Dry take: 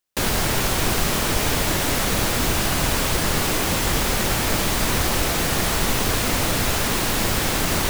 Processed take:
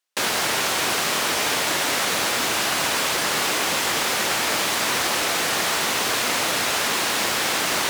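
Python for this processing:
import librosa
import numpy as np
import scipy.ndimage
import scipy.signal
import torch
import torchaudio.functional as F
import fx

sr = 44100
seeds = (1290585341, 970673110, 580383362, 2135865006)

y = fx.weighting(x, sr, curve='A')
y = y * 10.0 ** (1.5 / 20.0)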